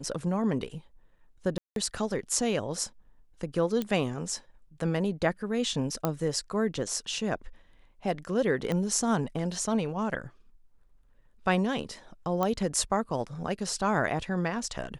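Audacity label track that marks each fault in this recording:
1.580000	1.760000	gap 0.182 s
3.820000	3.820000	pop -17 dBFS
6.050000	6.050000	pop -13 dBFS
8.720000	8.720000	pop -17 dBFS
12.430000	12.430000	pop -15 dBFS

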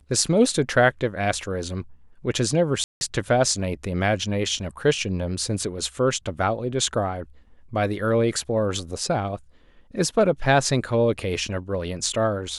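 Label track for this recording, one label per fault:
2.840000	3.010000	gap 0.171 s

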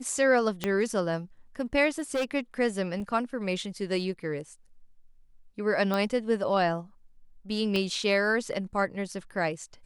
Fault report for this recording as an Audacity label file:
0.640000	0.640000	pop -13 dBFS
1.890000	2.240000	clipped -24.5 dBFS
3.000000	3.000000	gap 3.3 ms
5.940000	5.940000	pop -16 dBFS
7.760000	7.760000	pop -17 dBFS

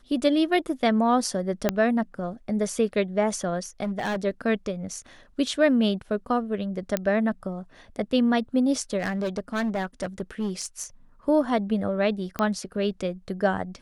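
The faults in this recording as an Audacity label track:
1.690000	1.690000	pop -7 dBFS
3.830000	4.250000	clipped -24 dBFS
6.970000	6.970000	pop -10 dBFS
8.980000	10.840000	clipped -23 dBFS
12.390000	12.390000	pop -13 dBFS

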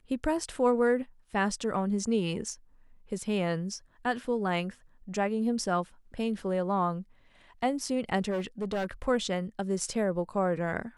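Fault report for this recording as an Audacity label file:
8.300000	9.080000	clipped -27 dBFS

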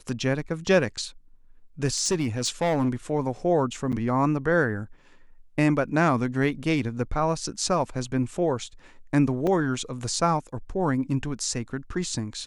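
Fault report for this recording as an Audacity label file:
1.860000	2.890000	clipped -19 dBFS
3.920000	3.930000	gap 7.6 ms
9.470000	9.470000	gap 2.8 ms

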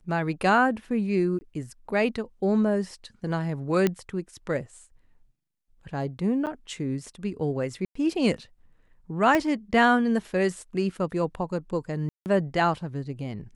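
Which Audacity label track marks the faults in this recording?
1.390000	1.410000	gap 20 ms
3.870000	3.870000	pop -10 dBFS
6.460000	6.470000	gap 8.9 ms
7.850000	7.950000	gap 0.104 s
9.350000	9.350000	pop -11 dBFS
12.090000	12.260000	gap 0.169 s

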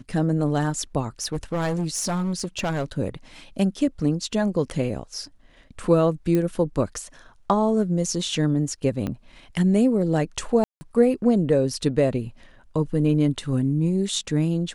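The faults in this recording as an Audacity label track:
1.210000	2.840000	clipped -21 dBFS
6.350000	6.350000	pop -12 dBFS
9.070000	9.070000	pop -16 dBFS
10.640000	10.810000	gap 0.17 s

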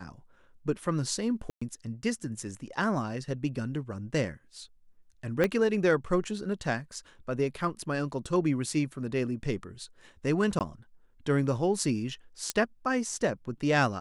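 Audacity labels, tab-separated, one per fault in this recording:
1.500000	1.610000	gap 0.115 s
5.440000	5.440000	pop -13 dBFS
10.590000	10.610000	gap 18 ms
12.500000	12.500000	pop -12 dBFS

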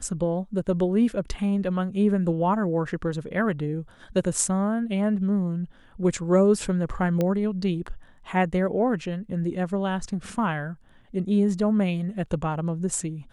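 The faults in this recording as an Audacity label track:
7.210000	7.210000	pop -13 dBFS

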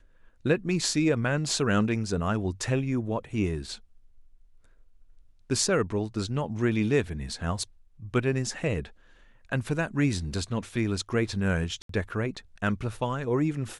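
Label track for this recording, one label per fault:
11.820000	11.890000	gap 73 ms

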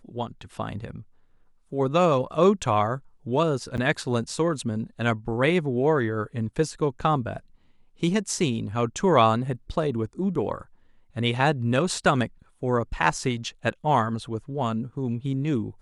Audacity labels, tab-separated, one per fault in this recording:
3.770000	3.780000	gap 8.7 ms

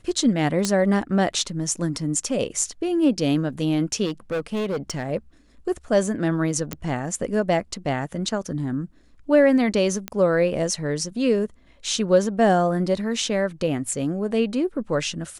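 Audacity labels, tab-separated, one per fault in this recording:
0.650000	0.650000	pop -8 dBFS
4.050000	5.080000	clipped -22 dBFS
6.730000	6.730000	pop -12 dBFS
10.080000	10.080000	pop -12 dBFS
13.880000	13.880000	gap 2.4 ms

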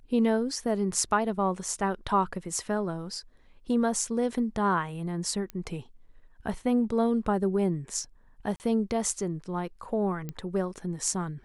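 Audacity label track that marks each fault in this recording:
5.500000	5.500000	pop -22 dBFS
8.560000	8.600000	gap 39 ms
10.290000	10.290000	pop -22 dBFS

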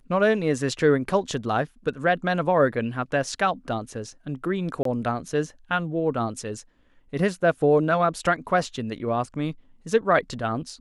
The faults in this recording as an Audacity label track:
4.830000	4.850000	gap 23 ms

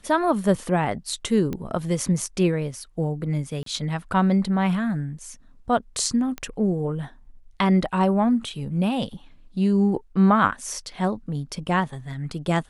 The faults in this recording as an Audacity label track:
1.530000	1.530000	pop -17 dBFS
3.630000	3.660000	gap 33 ms
6.380000	6.380000	pop -17 dBFS

